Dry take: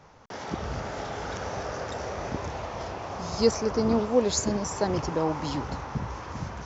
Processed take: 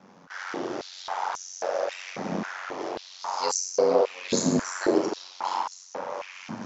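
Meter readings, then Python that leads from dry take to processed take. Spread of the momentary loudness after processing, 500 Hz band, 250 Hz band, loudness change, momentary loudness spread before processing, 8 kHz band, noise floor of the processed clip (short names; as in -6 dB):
12 LU, +1.0 dB, -1.0 dB, +0.5 dB, 12 LU, n/a, -50 dBFS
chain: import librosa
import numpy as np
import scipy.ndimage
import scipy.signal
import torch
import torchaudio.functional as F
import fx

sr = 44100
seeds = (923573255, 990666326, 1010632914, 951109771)

y = fx.rev_schroeder(x, sr, rt60_s=0.73, comb_ms=28, drr_db=1.0)
y = y * np.sin(2.0 * np.pi * 46.0 * np.arange(len(y)) / sr)
y = fx.filter_held_highpass(y, sr, hz=3.7, low_hz=210.0, high_hz=6400.0)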